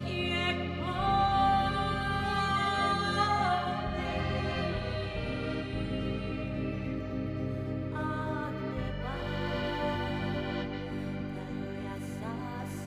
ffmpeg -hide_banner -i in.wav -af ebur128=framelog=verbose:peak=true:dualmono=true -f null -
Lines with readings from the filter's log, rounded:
Integrated loudness:
  I:         -29.1 LUFS
  Threshold: -39.1 LUFS
Loudness range:
  LRA:         6.4 LU
  Threshold: -49.3 LUFS
  LRA low:   -32.0 LUFS
  LRA high:  -25.7 LUFS
True peak:
  Peak:      -15.6 dBFS